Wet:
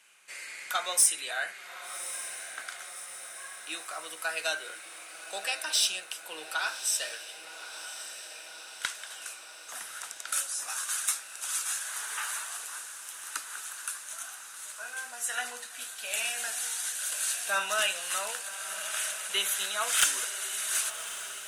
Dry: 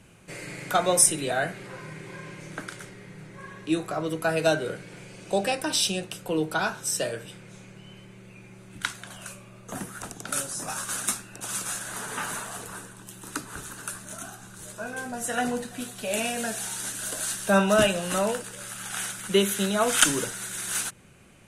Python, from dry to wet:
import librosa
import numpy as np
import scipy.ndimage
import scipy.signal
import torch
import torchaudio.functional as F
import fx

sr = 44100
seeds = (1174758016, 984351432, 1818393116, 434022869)

y = scipy.signal.sosfilt(scipy.signal.butter(2, 1400.0, 'highpass', fs=sr, output='sos'), x)
y = 10.0 ** (-15.5 / 20.0) * np.tanh(y / 10.0 ** (-15.5 / 20.0))
y = fx.echo_diffused(y, sr, ms=1143, feedback_pct=66, wet_db=-11.5)